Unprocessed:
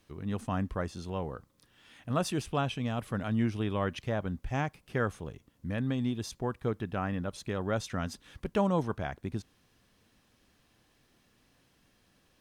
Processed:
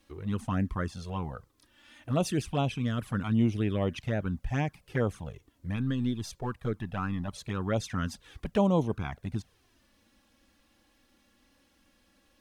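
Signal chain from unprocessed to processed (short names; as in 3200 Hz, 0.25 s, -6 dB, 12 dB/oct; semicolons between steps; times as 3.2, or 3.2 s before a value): 5.76–7.28 half-wave gain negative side -3 dB; envelope flanger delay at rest 3.7 ms, full sweep at -25 dBFS; gain +4 dB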